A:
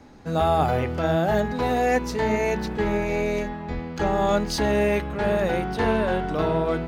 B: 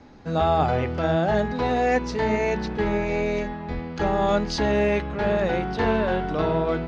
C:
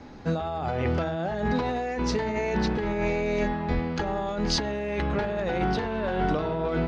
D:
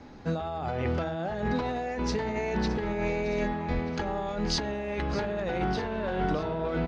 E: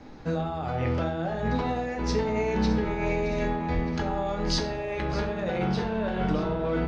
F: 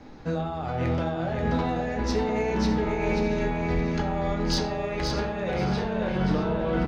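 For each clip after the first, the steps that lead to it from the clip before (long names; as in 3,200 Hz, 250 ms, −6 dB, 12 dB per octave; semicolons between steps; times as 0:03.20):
low-pass filter 6,000 Hz 24 dB per octave
compressor whose output falls as the input rises −27 dBFS, ratio −1
repeating echo 617 ms, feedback 54%, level −15.5 dB; level −3 dB
convolution reverb RT60 0.55 s, pre-delay 6 ms, DRR 3.5 dB
hard clipping −18 dBFS, distortion −27 dB; on a send: repeating echo 531 ms, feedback 22%, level −5 dB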